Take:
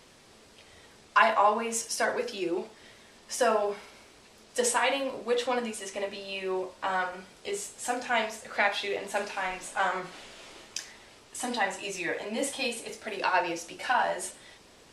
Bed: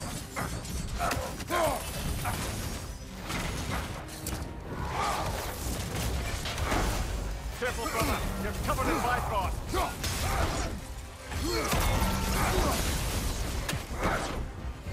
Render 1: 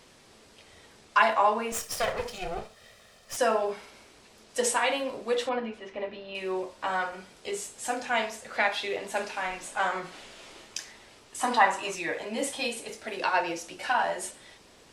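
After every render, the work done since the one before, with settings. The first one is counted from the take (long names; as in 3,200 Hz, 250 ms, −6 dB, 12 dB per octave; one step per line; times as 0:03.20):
0:01.72–0:03.37: lower of the sound and its delayed copy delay 1.6 ms
0:05.49–0:06.35: high-frequency loss of the air 320 metres
0:11.41–0:11.95: parametric band 1,100 Hz +14.5 dB 1.1 octaves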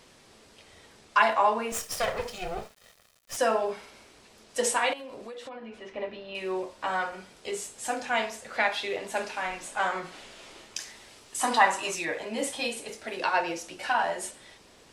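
0:01.70–0:03.48: centre clipping without the shift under −49.5 dBFS
0:04.93–0:05.89: downward compressor 20 to 1, threshold −37 dBFS
0:10.80–0:12.05: high-shelf EQ 4,000 Hz +6.5 dB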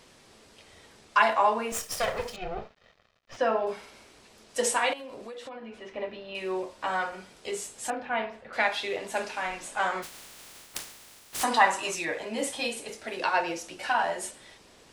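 0:02.36–0:03.67: high-frequency loss of the air 220 metres
0:07.90–0:08.53: high-frequency loss of the air 400 metres
0:10.02–0:11.42: compressing power law on the bin magnitudes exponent 0.16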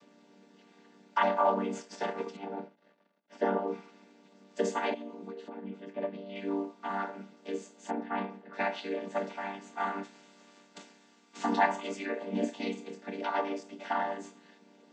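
channel vocoder with a chord as carrier minor triad, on G3
tuned comb filter 170 Hz, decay 1.8 s, mix 30%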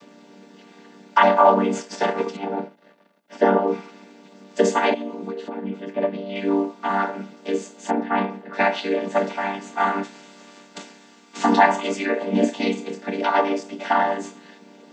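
level +12 dB
brickwall limiter −3 dBFS, peak gain reduction 2.5 dB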